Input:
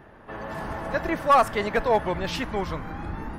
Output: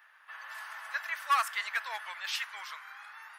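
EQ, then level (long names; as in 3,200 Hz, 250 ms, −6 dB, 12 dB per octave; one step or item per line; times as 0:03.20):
high-pass filter 1,300 Hz 24 dB per octave
high-shelf EQ 11,000 Hz +5 dB
−2.0 dB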